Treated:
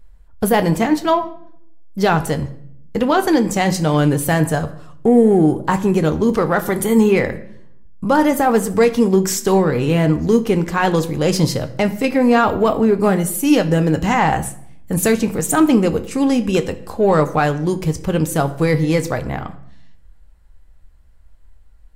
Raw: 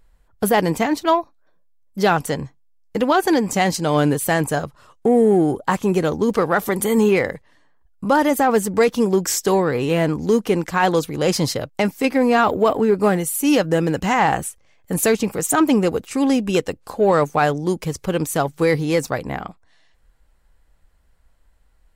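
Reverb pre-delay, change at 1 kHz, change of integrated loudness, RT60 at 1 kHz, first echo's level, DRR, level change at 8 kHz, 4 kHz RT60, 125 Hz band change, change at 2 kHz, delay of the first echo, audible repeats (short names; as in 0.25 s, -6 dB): 9 ms, +1.0 dB, +2.5 dB, 0.60 s, none, 9.0 dB, +0.5 dB, 0.50 s, +5.5 dB, +0.5 dB, none, none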